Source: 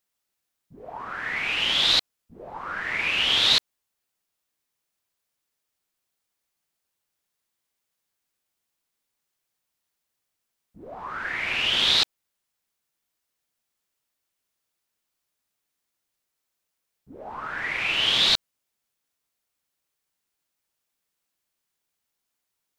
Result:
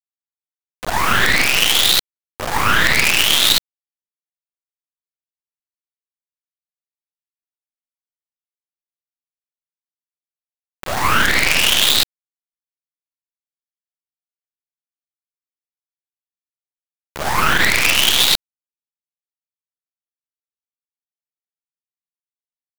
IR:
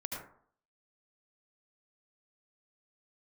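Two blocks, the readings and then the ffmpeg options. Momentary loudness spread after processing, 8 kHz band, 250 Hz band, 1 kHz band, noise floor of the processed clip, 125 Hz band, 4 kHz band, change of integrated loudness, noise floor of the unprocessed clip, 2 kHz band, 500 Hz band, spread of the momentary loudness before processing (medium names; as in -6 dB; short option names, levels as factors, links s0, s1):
12 LU, +18.0 dB, +14.0 dB, +13.5 dB, under -85 dBFS, +16.0 dB, +6.0 dB, +7.5 dB, -82 dBFS, +10.5 dB, +11.5 dB, 19 LU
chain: -af "highpass=f=1500:p=1,equalizer=f=11000:t=o:w=0.81:g=-5,acompressor=threshold=0.0447:ratio=6,acrusher=bits=5:dc=4:mix=0:aa=0.000001,alimiter=level_in=26.6:limit=0.891:release=50:level=0:latency=1,volume=0.891"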